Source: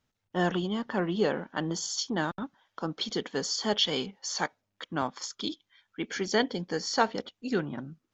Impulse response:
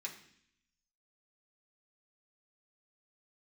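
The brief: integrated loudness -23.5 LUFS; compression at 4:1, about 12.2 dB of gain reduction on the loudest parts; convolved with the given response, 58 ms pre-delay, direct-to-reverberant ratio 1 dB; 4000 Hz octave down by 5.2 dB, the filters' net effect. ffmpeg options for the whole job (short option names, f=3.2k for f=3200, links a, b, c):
-filter_complex "[0:a]equalizer=f=4k:t=o:g=-7,acompressor=threshold=-35dB:ratio=4,asplit=2[a][b];[1:a]atrim=start_sample=2205,adelay=58[c];[b][c]afir=irnorm=-1:irlink=0,volume=0dB[d];[a][d]amix=inputs=2:normalize=0,volume=14dB"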